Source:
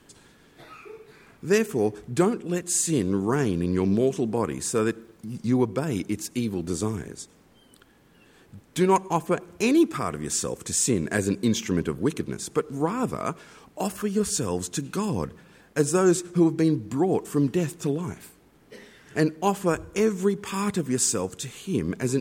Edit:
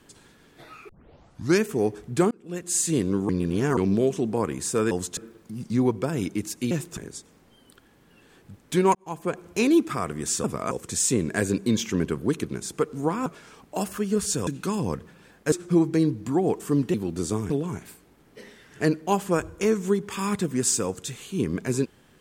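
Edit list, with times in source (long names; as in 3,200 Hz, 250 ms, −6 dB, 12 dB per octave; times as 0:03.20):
0:00.89: tape start 0.74 s
0:02.31–0:02.77: fade in
0:03.29–0:03.77: reverse
0:06.45–0:07.01: swap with 0:17.59–0:17.85
0:08.99–0:09.48: fade in
0:13.03–0:13.30: move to 0:10.48
0:14.51–0:14.77: move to 0:04.91
0:15.82–0:16.17: remove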